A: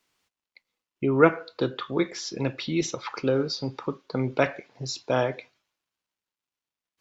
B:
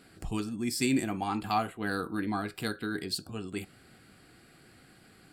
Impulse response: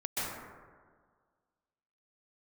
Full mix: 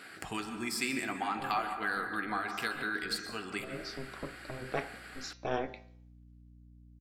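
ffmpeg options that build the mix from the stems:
-filter_complex "[0:a]bandreject=f=52.51:t=h:w=4,bandreject=f=105.02:t=h:w=4,bandreject=f=157.53:t=h:w=4,bandreject=f=210.04:t=h:w=4,bandreject=f=262.55:t=h:w=4,bandreject=f=315.06:t=h:w=4,bandreject=f=367.57:t=h:w=4,bandreject=f=420.08:t=h:w=4,bandreject=f=472.59:t=h:w=4,bandreject=f=525.1:t=h:w=4,bandreject=f=577.61:t=h:w=4,bandreject=f=630.12:t=h:w=4,bandreject=f=682.63:t=h:w=4,bandreject=f=735.14:t=h:w=4,bandreject=f=787.65:t=h:w=4,bandreject=f=840.16:t=h:w=4,bandreject=f=892.67:t=h:w=4,bandreject=f=945.18:t=h:w=4,bandreject=f=997.69:t=h:w=4,bandreject=f=1.0502k:t=h:w=4,bandreject=f=1.10271k:t=h:w=4,aeval=exprs='val(0)*sin(2*PI*130*n/s)':c=same,aeval=exprs='val(0)+0.00355*(sin(2*PI*60*n/s)+sin(2*PI*2*60*n/s)/2+sin(2*PI*3*60*n/s)/3+sin(2*PI*4*60*n/s)/4+sin(2*PI*5*60*n/s)/5)':c=same,adelay=350,volume=-5.5dB[a];[1:a]highpass=f=430:p=1,equalizer=f=1.7k:w=0.75:g=9.5,acompressor=threshold=-44dB:ratio=2,volume=3dB,asplit=3[b][c][d];[c]volume=-11dB[e];[d]apad=whole_len=324245[f];[a][f]sidechaincompress=threshold=-49dB:ratio=8:attack=16:release=345[g];[2:a]atrim=start_sample=2205[h];[e][h]afir=irnorm=-1:irlink=0[i];[g][b][i]amix=inputs=3:normalize=0,bandreject=f=173.8:t=h:w=4,bandreject=f=347.6:t=h:w=4,bandreject=f=521.4:t=h:w=4,bandreject=f=695.2:t=h:w=4,bandreject=f=869:t=h:w=4,bandreject=f=1.0428k:t=h:w=4,bandreject=f=1.2166k:t=h:w=4,bandreject=f=1.3904k:t=h:w=4,bandreject=f=1.5642k:t=h:w=4,bandreject=f=1.738k:t=h:w=4,bandreject=f=1.9118k:t=h:w=4,bandreject=f=2.0856k:t=h:w=4,bandreject=f=2.2594k:t=h:w=4,bandreject=f=2.4332k:t=h:w=4,bandreject=f=2.607k:t=h:w=4,bandreject=f=2.7808k:t=h:w=4,bandreject=f=2.9546k:t=h:w=4,bandreject=f=3.1284k:t=h:w=4,bandreject=f=3.3022k:t=h:w=4,bandreject=f=3.476k:t=h:w=4,bandreject=f=3.6498k:t=h:w=4,bandreject=f=3.8236k:t=h:w=4,bandreject=f=3.9974k:t=h:w=4,bandreject=f=4.1712k:t=h:w=4,bandreject=f=4.345k:t=h:w=4,bandreject=f=4.5188k:t=h:w=4,bandreject=f=4.6926k:t=h:w=4,bandreject=f=4.8664k:t=h:w=4,bandreject=f=5.0402k:t=h:w=4,bandreject=f=5.214k:t=h:w=4,bandreject=f=5.3878k:t=h:w=4,bandreject=f=5.5616k:t=h:w=4,bandreject=f=5.7354k:t=h:w=4,bandreject=f=5.9092k:t=h:w=4,bandreject=f=6.083k:t=h:w=4,bandreject=f=6.2568k:t=h:w=4,bandreject=f=6.4306k:t=h:w=4,bandreject=f=6.6044k:t=h:w=4"

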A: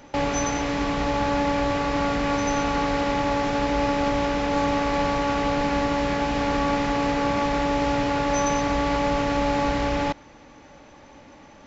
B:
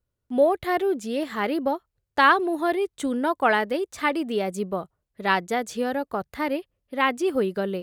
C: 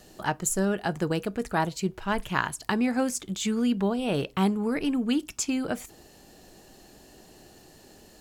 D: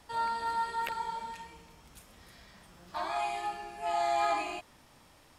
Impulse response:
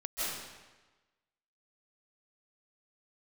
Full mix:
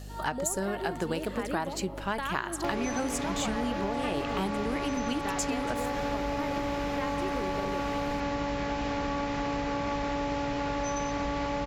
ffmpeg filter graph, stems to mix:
-filter_complex "[0:a]adelay=2500,volume=-4.5dB[a];[1:a]agate=range=-33dB:threshold=-29dB:ratio=3:detection=peak,acompressor=threshold=-23dB:ratio=6,volume=-8dB,asplit=2[b][c];[c]volume=-9.5dB[d];[2:a]lowshelf=f=160:g=-11.5,volume=2dB[e];[3:a]volume=-9dB[f];[4:a]atrim=start_sample=2205[g];[d][g]afir=irnorm=-1:irlink=0[h];[a][b][e][f][h]amix=inputs=5:normalize=0,aeval=exprs='val(0)+0.00891*(sin(2*PI*50*n/s)+sin(2*PI*2*50*n/s)/2+sin(2*PI*3*50*n/s)/3+sin(2*PI*4*50*n/s)/4+sin(2*PI*5*50*n/s)/5)':c=same,acompressor=threshold=-27dB:ratio=6"

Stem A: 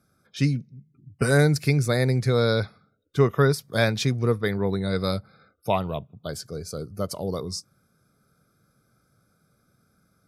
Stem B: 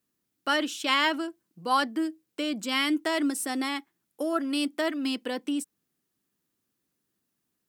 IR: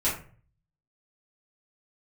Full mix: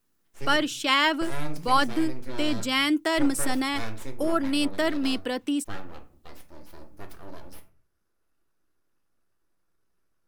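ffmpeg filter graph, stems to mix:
-filter_complex "[0:a]aeval=exprs='abs(val(0))':c=same,volume=-14.5dB,asplit=2[a][b];[b]volume=-13.5dB[c];[1:a]volume=2.5dB[d];[2:a]atrim=start_sample=2205[e];[c][e]afir=irnorm=-1:irlink=0[f];[a][d][f]amix=inputs=3:normalize=0"

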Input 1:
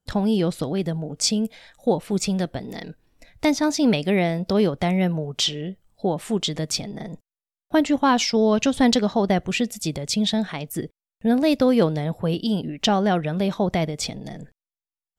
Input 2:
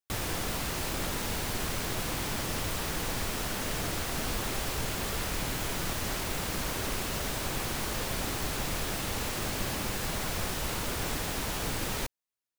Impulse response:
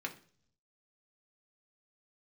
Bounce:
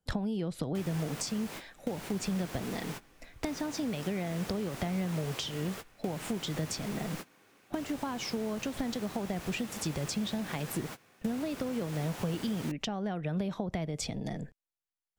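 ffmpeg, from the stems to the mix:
-filter_complex "[0:a]acompressor=threshold=-25dB:ratio=6,volume=-1dB,asplit=2[a][b];[1:a]highpass=150,adelay=650,volume=-6.5dB,asplit=2[c][d];[d]volume=-24dB[e];[b]apad=whole_len=583525[f];[c][f]sidechaingate=range=-30dB:threshold=-43dB:ratio=16:detection=peak[g];[2:a]atrim=start_sample=2205[h];[e][h]afir=irnorm=-1:irlink=0[i];[a][g][i]amix=inputs=3:normalize=0,highshelf=f=7.9k:g=-5,acrossover=split=160[j][k];[k]acompressor=threshold=-33dB:ratio=4[l];[j][l]amix=inputs=2:normalize=0,equalizer=f=4.1k:t=o:w=0.77:g=-2.5"

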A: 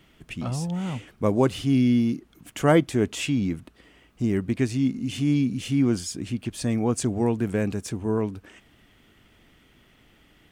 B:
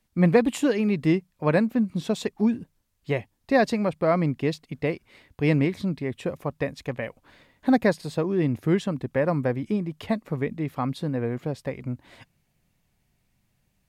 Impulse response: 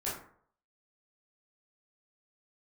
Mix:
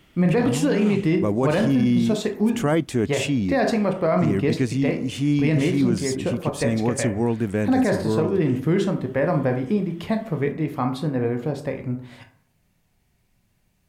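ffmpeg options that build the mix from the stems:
-filter_complex "[0:a]volume=1.5dB[a];[1:a]volume=0.5dB,asplit=2[b][c];[c]volume=-6.5dB[d];[2:a]atrim=start_sample=2205[e];[d][e]afir=irnorm=-1:irlink=0[f];[a][b][f]amix=inputs=3:normalize=0,alimiter=limit=-12dB:level=0:latency=1:release=12"

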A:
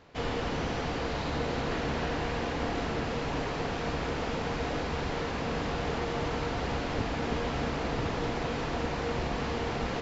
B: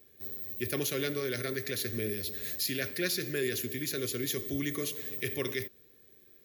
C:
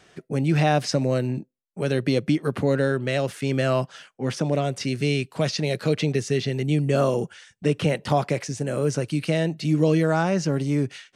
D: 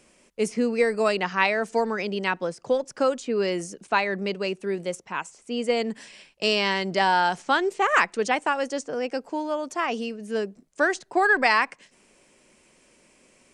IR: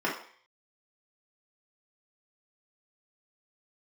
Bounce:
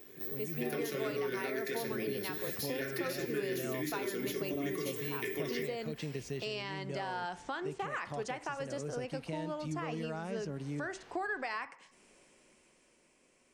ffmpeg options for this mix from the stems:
-filter_complex "[0:a]acrossover=split=420[a][b];[a]aeval=exprs='val(0)*(1-0.7/2+0.7/2*cos(2*PI*2.6*n/s))':c=same[c];[b]aeval=exprs='val(0)*(1-0.7/2-0.7/2*cos(2*PI*2.6*n/s))':c=same[d];[c][d]amix=inputs=2:normalize=0,asoftclip=type=tanh:threshold=-39dB,adelay=1650,volume=-19.5dB[e];[1:a]acompressor=threshold=-35dB:ratio=6,volume=1.5dB,asplit=2[f][g];[g]volume=-4.5dB[h];[2:a]volume=-17dB[i];[3:a]volume=-11dB,asplit=2[j][k];[k]volume=-21dB[l];[e][i][j]amix=inputs=3:normalize=0,dynaudnorm=f=110:g=21:m=7.5dB,alimiter=limit=-21dB:level=0:latency=1:release=465,volume=0dB[m];[4:a]atrim=start_sample=2205[n];[h][l]amix=inputs=2:normalize=0[o];[o][n]afir=irnorm=-1:irlink=0[p];[f][m][p]amix=inputs=3:normalize=0,acompressor=threshold=-40dB:ratio=2"

